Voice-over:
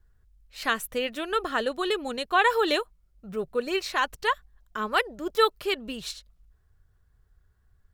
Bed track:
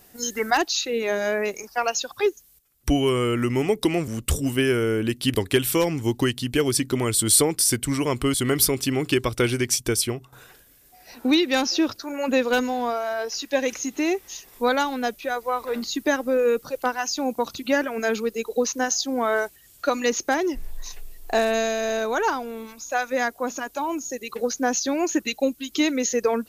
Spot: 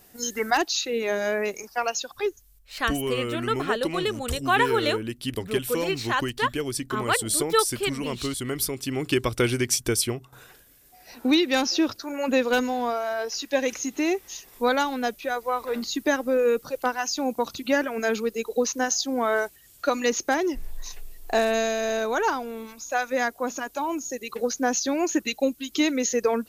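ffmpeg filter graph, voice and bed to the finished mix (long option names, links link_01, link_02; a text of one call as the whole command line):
ffmpeg -i stem1.wav -i stem2.wav -filter_complex "[0:a]adelay=2150,volume=0dB[link_01];[1:a]volume=5dB,afade=type=out:start_time=1.67:duration=0.89:silence=0.501187,afade=type=in:start_time=8.8:duration=0.41:silence=0.473151[link_02];[link_01][link_02]amix=inputs=2:normalize=0" out.wav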